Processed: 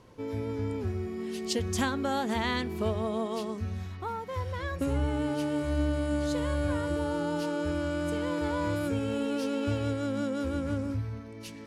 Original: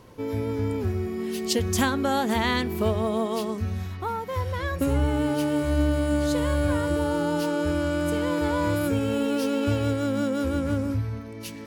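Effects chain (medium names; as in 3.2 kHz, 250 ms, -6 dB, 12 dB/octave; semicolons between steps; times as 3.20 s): low-pass 9.7 kHz 12 dB/octave; trim -5.5 dB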